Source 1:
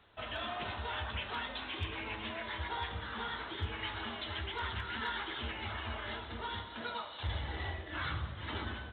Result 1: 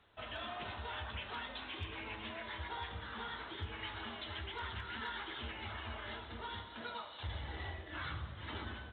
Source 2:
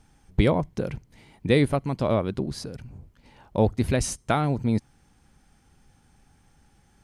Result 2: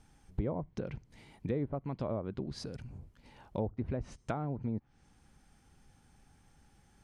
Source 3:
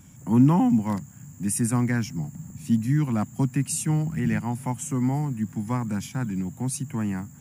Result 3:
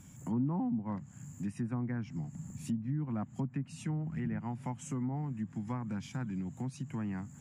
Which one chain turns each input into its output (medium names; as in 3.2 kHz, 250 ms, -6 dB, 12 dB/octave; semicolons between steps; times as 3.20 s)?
low-pass that closes with the level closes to 1 kHz, closed at -18.5 dBFS; compression 2:1, threshold -34 dBFS; trim -4 dB